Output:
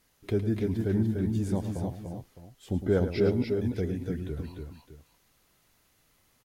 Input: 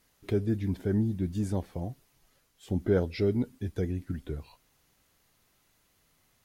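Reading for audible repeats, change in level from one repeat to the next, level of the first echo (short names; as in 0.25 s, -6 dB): 3, no steady repeat, -10.5 dB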